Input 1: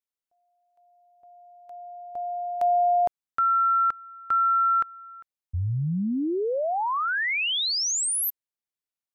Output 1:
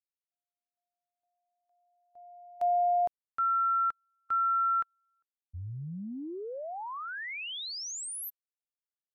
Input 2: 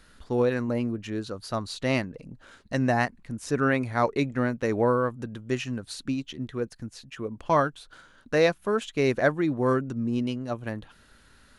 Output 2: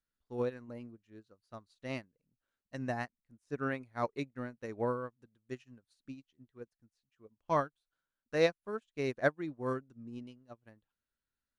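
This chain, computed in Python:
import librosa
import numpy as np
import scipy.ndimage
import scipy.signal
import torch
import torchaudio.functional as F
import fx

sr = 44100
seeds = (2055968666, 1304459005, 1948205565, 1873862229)

y = fx.upward_expand(x, sr, threshold_db=-39.0, expansion=2.5)
y = F.gain(torch.from_numpy(y), -5.0).numpy()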